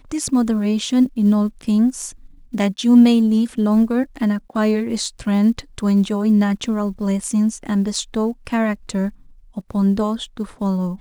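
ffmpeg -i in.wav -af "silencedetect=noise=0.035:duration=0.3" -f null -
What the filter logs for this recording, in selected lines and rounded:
silence_start: 2.11
silence_end: 2.54 | silence_duration: 0.43
silence_start: 9.09
silence_end: 9.57 | silence_duration: 0.48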